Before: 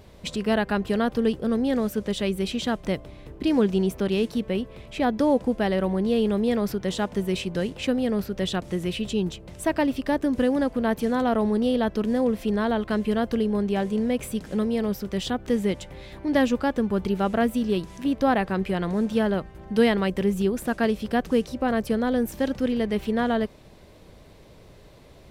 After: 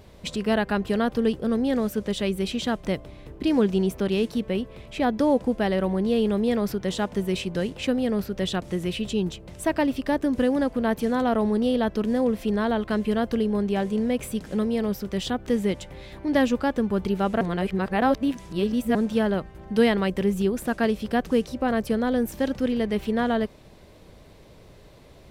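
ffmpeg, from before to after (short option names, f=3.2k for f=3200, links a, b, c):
-filter_complex "[0:a]asplit=3[a][b][c];[a]atrim=end=17.412[d];[b]atrim=start=17.408:end=18.952,asetpts=PTS-STARTPTS,areverse[e];[c]atrim=start=18.948[f];[d][e]acrossfade=d=0.004:c1=hsin:c2=hsin[g];[g][f]acrossfade=d=0.004:c1=hsin:c2=hsin"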